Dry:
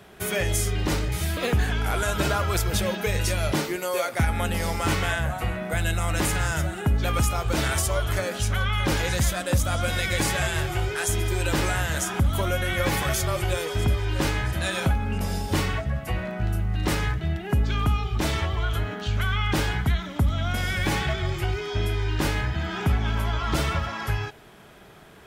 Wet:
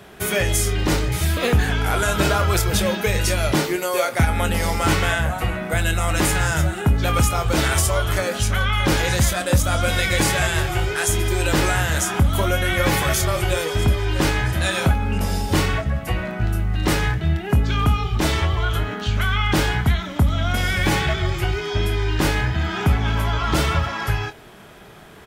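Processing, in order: doubling 25 ms -10.5 dB; trim +5 dB

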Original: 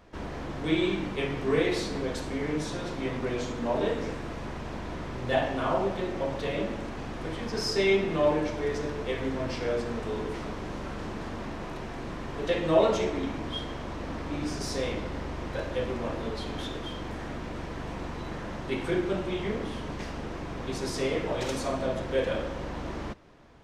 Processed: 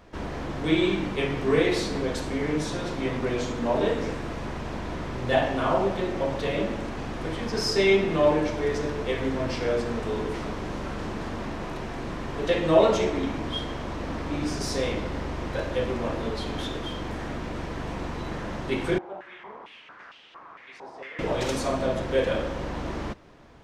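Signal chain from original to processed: 18.98–21.19 s: step-sequenced band-pass 4.4 Hz 790–3100 Hz; trim +3.5 dB

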